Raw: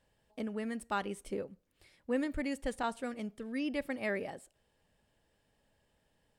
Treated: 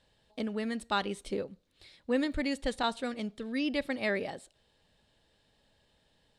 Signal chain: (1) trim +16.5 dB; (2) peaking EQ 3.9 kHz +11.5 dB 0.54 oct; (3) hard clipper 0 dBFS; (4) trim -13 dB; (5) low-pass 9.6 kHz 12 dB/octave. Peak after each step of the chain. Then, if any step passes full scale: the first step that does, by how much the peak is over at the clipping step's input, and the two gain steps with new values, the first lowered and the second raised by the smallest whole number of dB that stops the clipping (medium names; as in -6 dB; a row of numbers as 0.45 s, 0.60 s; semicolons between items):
-5.0 dBFS, -4.0 dBFS, -4.0 dBFS, -17.0 dBFS, -17.0 dBFS; nothing clips